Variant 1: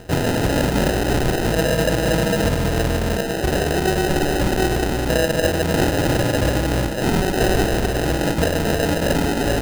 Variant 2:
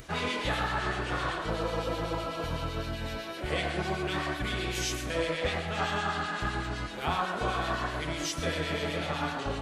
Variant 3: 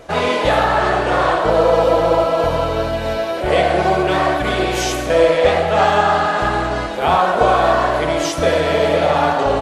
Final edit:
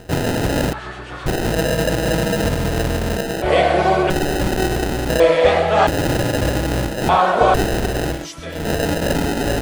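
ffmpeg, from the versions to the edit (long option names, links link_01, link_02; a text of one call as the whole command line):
ffmpeg -i take0.wav -i take1.wav -i take2.wav -filter_complex "[1:a]asplit=2[link_01][link_02];[2:a]asplit=3[link_03][link_04][link_05];[0:a]asplit=6[link_06][link_07][link_08][link_09][link_10][link_11];[link_06]atrim=end=0.732[link_12];[link_01]atrim=start=0.728:end=1.262[link_13];[link_07]atrim=start=1.258:end=3.422[link_14];[link_03]atrim=start=3.418:end=4.102[link_15];[link_08]atrim=start=4.098:end=5.202[link_16];[link_04]atrim=start=5.198:end=5.872[link_17];[link_09]atrim=start=5.868:end=7.092[link_18];[link_05]atrim=start=7.088:end=7.542[link_19];[link_10]atrim=start=7.538:end=8.28[link_20];[link_02]atrim=start=8.04:end=8.72[link_21];[link_11]atrim=start=8.48[link_22];[link_12][link_13]acrossfade=duration=0.004:curve1=hsin:curve2=hsin[link_23];[link_23][link_14]acrossfade=duration=0.004:curve1=hsin:curve2=hsin[link_24];[link_24][link_15]acrossfade=duration=0.004:curve1=hsin:curve2=hsin[link_25];[link_25][link_16]acrossfade=duration=0.004:curve1=hsin:curve2=hsin[link_26];[link_26][link_17]acrossfade=duration=0.004:curve1=hsin:curve2=hsin[link_27];[link_27][link_18]acrossfade=duration=0.004:curve1=hsin:curve2=hsin[link_28];[link_28][link_19]acrossfade=duration=0.004:curve1=hsin:curve2=hsin[link_29];[link_29][link_20]acrossfade=duration=0.004:curve1=hsin:curve2=hsin[link_30];[link_30][link_21]acrossfade=duration=0.24:curve1=tri:curve2=tri[link_31];[link_31][link_22]acrossfade=duration=0.24:curve1=tri:curve2=tri" out.wav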